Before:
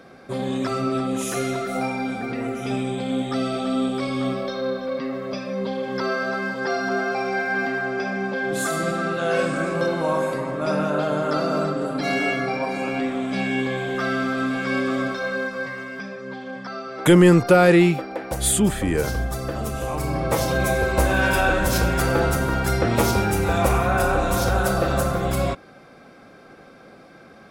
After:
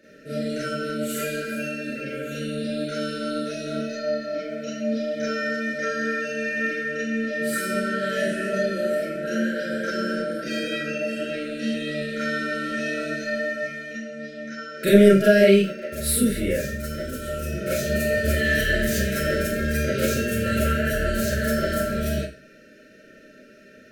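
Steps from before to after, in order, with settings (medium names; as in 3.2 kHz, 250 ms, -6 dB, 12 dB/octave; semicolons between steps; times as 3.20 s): tape speed +15%; FFT band-reject 640–1300 Hz; Schroeder reverb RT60 0.33 s, combs from 28 ms, DRR -8 dB; trim -10.5 dB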